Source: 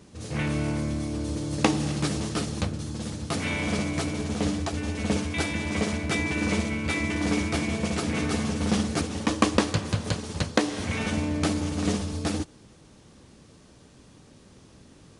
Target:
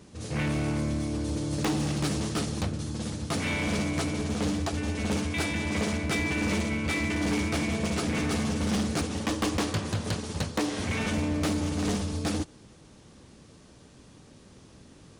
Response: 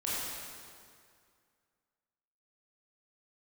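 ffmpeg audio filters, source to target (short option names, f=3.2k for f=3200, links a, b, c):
-af "volume=23dB,asoftclip=hard,volume=-23dB"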